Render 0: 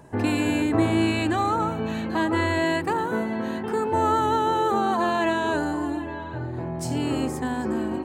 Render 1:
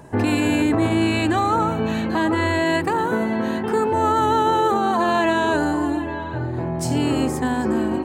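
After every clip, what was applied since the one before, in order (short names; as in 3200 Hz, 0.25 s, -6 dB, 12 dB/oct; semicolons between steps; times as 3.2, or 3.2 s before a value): limiter -16.5 dBFS, peak gain reduction 7 dB; gain +5.5 dB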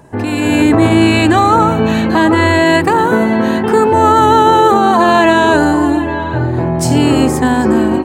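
AGC gain up to 11.5 dB; gain +1 dB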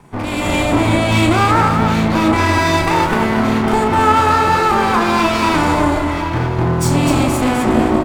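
minimum comb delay 0.87 ms; limiter -4.5 dBFS, peak gain reduction 4 dB; on a send: loudspeakers at several distances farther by 12 m -5 dB, 87 m -5 dB; on the sum: gain -2.5 dB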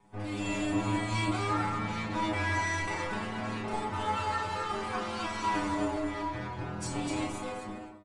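ending faded out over 0.85 s; downsampling 22050 Hz; metallic resonator 100 Hz, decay 0.39 s, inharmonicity 0.002; gain -6 dB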